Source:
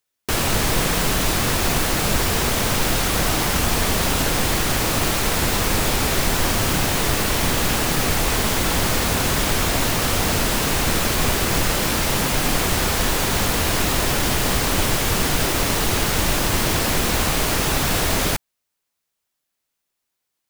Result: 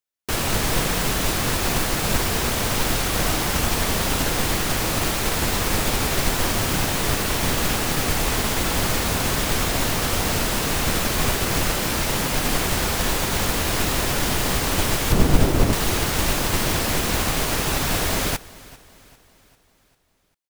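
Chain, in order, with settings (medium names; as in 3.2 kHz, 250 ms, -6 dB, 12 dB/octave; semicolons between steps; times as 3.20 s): 15.12–15.73 s: tilt shelf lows +7 dB, about 760 Hz; feedback delay 396 ms, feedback 53%, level -14.5 dB; upward expansion 1.5:1, over -36 dBFS; trim +2 dB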